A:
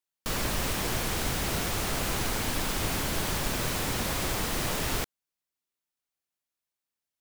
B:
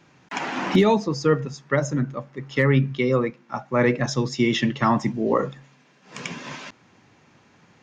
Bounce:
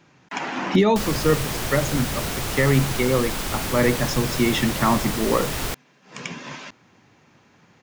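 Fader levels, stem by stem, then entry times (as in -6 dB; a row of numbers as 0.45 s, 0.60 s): +2.5 dB, 0.0 dB; 0.70 s, 0.00 s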